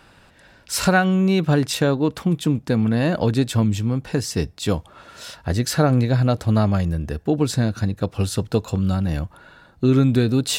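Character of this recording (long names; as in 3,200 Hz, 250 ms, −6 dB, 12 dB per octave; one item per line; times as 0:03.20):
background noise floor −52 dBFS
spectral slope −6.5 dB per octave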